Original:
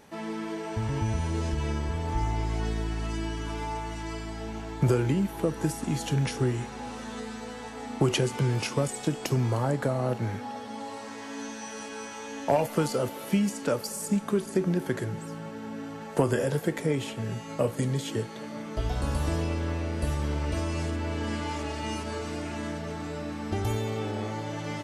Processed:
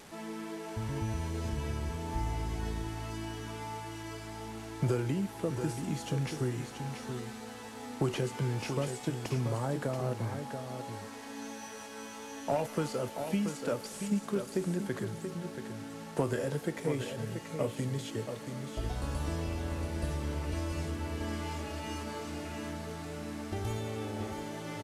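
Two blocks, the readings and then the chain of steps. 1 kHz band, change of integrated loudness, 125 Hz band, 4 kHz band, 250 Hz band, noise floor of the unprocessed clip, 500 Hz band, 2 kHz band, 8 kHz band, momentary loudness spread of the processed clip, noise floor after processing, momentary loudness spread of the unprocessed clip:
−6.0 dB, −6.0 dB, −6.0 dB, −6.0 dB, −5.5 dB, −40 dBFS, −6.0 dB, −6.0 dB, −6.0 dB, 10 LU, −45 dBFS, 11 LU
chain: linear delta modulator 64 kbit/s, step −39.5 dBFS
single-tap delay 681 ms −7.5 dB
level −6.5 dB

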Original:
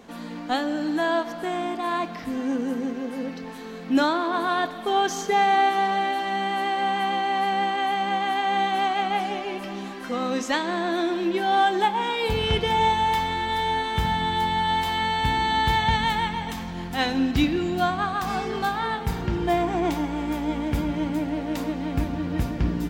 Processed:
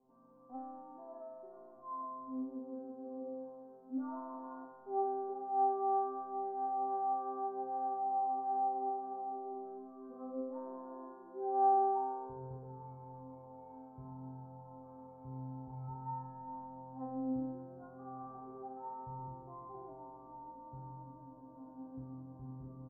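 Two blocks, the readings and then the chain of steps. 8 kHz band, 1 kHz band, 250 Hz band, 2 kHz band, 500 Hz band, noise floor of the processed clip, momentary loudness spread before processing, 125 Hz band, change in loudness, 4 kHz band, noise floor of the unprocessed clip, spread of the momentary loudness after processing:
below −40 dB, −14.0 dB, −18.5 dB, below −40 dB, −15.0 dB, −56 dBFS, 8 LU, −18.5 dB, −15.0 dB, below −40 dB, −36 dBFS, 18 LU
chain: Butterworth low-pass 1,100 Hz 48 dB per octave
tuned comb filter 130 Hz, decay 1.8 s, mix 100%
single-tap delay 403 ms −17.5 dB

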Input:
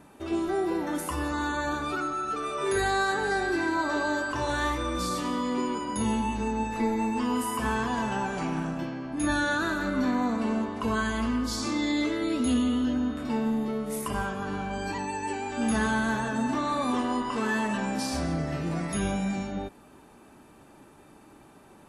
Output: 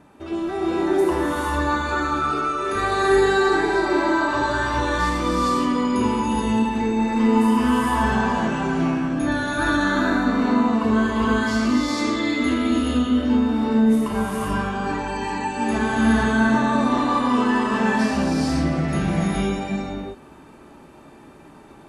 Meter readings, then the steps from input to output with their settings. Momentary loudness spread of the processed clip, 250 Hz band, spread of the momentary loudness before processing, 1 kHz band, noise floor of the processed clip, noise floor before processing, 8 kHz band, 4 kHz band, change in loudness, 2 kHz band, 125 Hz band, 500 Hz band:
6 LU, +8.5 dB, 6 LU, +7.5 dB, −46 dBFS, −54 dBFS, +1.5 dB, +5.5 dB, +7.5 dB, +6.5 dB, +7.5 dB, +8.0 dB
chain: high-shelf EQ 7,300 Hz −11.5 dB
reverb whose tail is shaped and stops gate 480 ms rising, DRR −5 dB
level +1.5 dB

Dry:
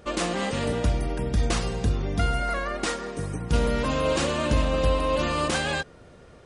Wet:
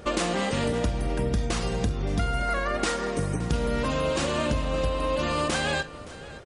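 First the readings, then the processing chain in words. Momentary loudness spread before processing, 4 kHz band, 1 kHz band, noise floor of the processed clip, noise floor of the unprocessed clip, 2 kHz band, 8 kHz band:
5 LU, −0.5 dB, −0.5 dB, −41 dBFS, −50 dBFS, 0.0 dB, −0.5 dB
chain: downward compressor, threshold −29 dBFS, peak gain reduction 12 dB
on a send: multi-tap delay 47/569 ms −16/−18 dB
on the sum: level +6 dB

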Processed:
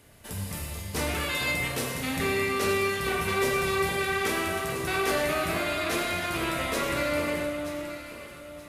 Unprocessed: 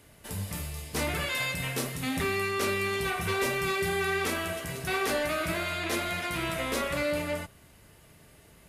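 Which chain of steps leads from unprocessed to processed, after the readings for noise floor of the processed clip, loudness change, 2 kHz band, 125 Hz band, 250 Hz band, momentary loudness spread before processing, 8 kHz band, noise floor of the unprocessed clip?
−44 dBFS, +2.0 dB, +2.0 dB, +1.0 dB, +2.5 dB, 7 LU, +2.0 dB, −56 dBFS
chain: delay that swaps between a low-pass and a high-pass 464 ms, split 1,300 Hz, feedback 56%, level −6 dB
four-comb reverb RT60 1.5 s, combs from 33 ms, DRR 3.5 dB

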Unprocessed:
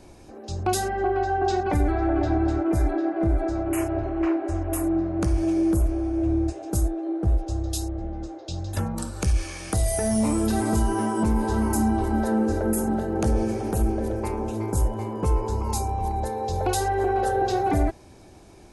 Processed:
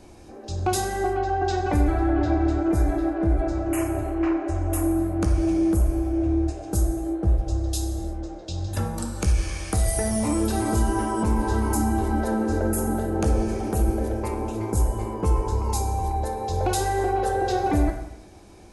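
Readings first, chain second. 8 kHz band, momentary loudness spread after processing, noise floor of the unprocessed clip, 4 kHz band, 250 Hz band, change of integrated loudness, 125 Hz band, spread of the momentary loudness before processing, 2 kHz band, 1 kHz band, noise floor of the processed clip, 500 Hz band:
+1.0 dB, 6 LU, −48 dBFS, +1.0 dB, 0.0 dB, +0.5 dB, +1.5 dB, 6 LU, +0.5 dB, 0.0 dB, −43 dBFS, −0.5 dB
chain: reverb whose tail is shaped and stops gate 370 ms falling, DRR 6 dB

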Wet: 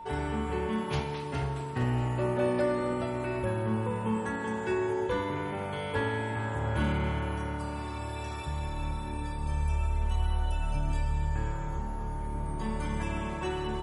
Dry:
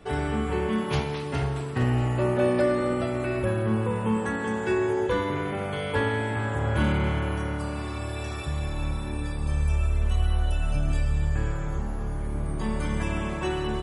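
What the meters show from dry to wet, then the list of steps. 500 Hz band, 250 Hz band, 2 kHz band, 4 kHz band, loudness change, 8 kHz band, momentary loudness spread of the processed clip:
−5.0 dB, −5.0 dB, −5.0 dB, −5.0 dB, −4.5 dB, −5.0 dB, 7 LU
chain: steady tone 910 Hz −36 dBFS
level −5 dB

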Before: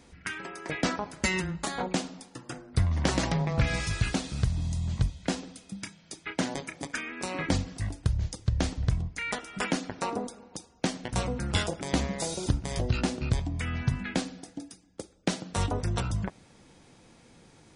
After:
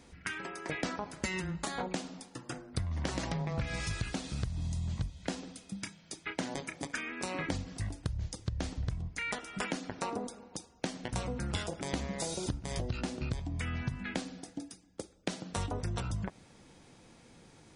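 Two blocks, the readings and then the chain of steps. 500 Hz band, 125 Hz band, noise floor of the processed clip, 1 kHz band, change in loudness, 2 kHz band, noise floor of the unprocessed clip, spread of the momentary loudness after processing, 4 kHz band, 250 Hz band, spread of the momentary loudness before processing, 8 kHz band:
−5.5 dB, −7.5 dB, −59 dBFS, −5.5 dB, −6.5 dB, −5.0 dB, −58 dBFS, 10 LU, −6.0 dB, −6.5 dB, 13 LU, −5.5 dB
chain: downward compressor 5 to 1, threshold −30 dBFS, peak gain reduction 10.5 dB
level −1.5 dB

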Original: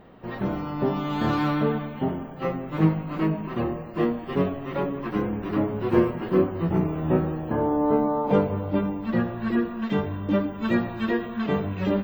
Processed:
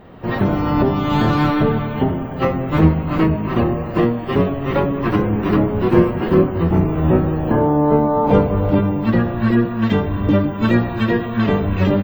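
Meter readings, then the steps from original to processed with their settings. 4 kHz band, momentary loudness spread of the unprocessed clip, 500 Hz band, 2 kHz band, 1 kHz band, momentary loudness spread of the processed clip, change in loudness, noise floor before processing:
+8.5 dB, 7 LU, +7.5 dB, +8.0 dB, +8.0 dB, 4 LU, +8.0 dB, −37 dBFS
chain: sub-octave generator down 1 octave, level −4 dB
camcorder AGC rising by 19 dB per second
far-end echo of a speakerphone 340 ms, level −15 dB
level +6 dB

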